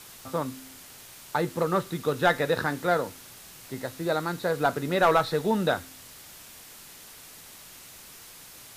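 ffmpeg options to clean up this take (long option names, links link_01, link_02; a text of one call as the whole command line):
ffmpeg -i in.wav -af "afwtdn=0.005" out.wav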